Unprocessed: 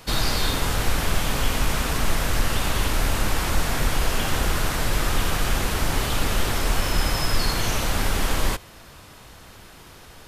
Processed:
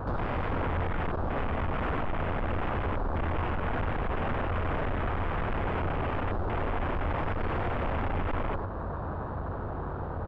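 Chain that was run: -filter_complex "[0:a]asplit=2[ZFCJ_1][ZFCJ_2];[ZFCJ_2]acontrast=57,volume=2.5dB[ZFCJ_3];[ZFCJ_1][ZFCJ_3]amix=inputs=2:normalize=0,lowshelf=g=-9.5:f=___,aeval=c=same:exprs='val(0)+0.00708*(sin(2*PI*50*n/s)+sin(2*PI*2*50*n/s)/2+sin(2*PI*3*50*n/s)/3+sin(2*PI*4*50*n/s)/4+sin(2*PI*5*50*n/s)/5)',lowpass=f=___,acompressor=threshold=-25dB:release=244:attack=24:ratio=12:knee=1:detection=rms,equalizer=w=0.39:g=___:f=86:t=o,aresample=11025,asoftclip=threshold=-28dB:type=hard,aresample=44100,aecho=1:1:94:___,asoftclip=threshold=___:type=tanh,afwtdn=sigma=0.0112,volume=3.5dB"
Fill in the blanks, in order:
190, 1.2k, 12, 0.596, -28.5dB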